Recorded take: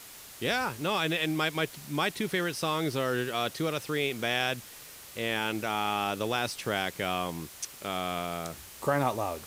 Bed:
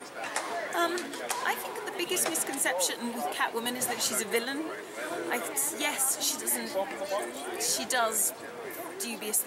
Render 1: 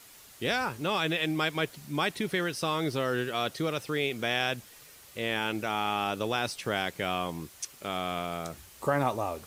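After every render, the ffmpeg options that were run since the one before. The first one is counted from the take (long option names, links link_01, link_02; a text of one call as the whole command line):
ffmpeg -i in.wav -af "afftdn=noise_reduction=6:noise_floor=-48" out.wav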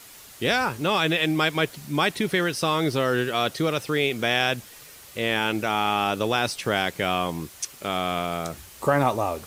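ffmpeg -i in.wav -af "acontrast=63" out.wav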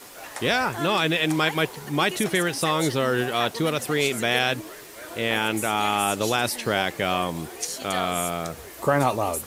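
ffmpeg -i in.wav -i bed.wav -filter_complex "[1:a]volume=-4.5dB[link_01];[0:a][link_01]amix=inputs=2:normalize=0" out.wav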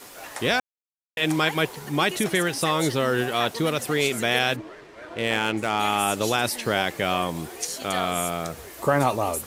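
ffmpeg -i in.wav -filter_complex "[0:a]asplit=3[link_01][link_02][link_03];[link_01]afade=type=out:start_time=4.55:duration=0.02[link_04];[link_02]adynamicsmooth=sensitivity=3.5:basefreq=2500,afade=type=in:start_time=4.55:duration=0.02,afade=type=out:start_time=5.78:duration=0.02[link_05];[link_03]afade=type=in:start_time=5.78:duration=0.02[link_06];[link_04][link_05][link_06]amix=inputs=3:normalize=0,asplit=3[link_07][link_08][link_09];[link_07]atrim=end=0.6,asetpts=PTS-STARTPTS,afade=type=out:start_time=0.596:duration=0.004:curve=hsin[link_10];[link_08]atrim=start=0.6:end=1.17,asetpts=PTS-STARTPTS,volume=0[link_11];[link_09]atrim=start=1.17,asetpts=PTS-STARTPTS,afade=type=in:duration=0.004:curve=hsin[link_12];[link_10][link_11][link_12]concat=n=3:v=0:a=1" out.wav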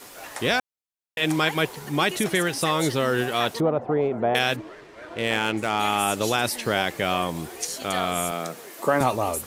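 ffmpeg -i in.wav -filter_complex "[0:a]asettb=1/sr,asplit=3[link_01][link_02][link_03];[link_01]atrim=end=3.604[link_04];[link_02]atrim=start=3.6:end=4.35,asetpts=PTS-STARTPTS,afade=type=in:duration=0.004:curve=qsin,afade=type=out:start_time=0.746:duration=0.004:curve=qsin,lowpass=frequency=800:width_type=q:width=2.1[link_05];[link_03]atrim=start=4.346[link_06];[link_04][link_05]acrossfade=duration=0.004:curve1=hsin:curve2=qsin[link_07];[link_07][link_06]acrossfade=duration=0.004:curve1=qsin:curve2=hsin,asettb=1/sr,asplit=3[link_08][link_09][link_10];[link_08]atrim=end=8.314[link_11];[link_09]atrim=start=8.31:end=9.01,asetpts=PTS-STARTPTS,afade=type=in:duration=0.004:curve=qsin,afade=type=out:start_time=0.696:duration=0.004:curve=qsin,highpass=frequency=170:width=0.5412,highpass=frequency=170:width=1.3066[link_12];[link_10]atrim=start=9.006[link_13];[link_11][link_12]acrossfade=duration=0.004:curve1=hsin:curve2=qsin[link_14];[link_14][link_13]acrossfade=duration=0.004:curve1=qsin:curve2=hsin" out.wav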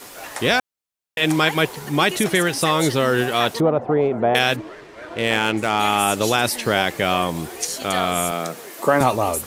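ffmpeg -i in.wav -af "volume=4.5dB" out.wav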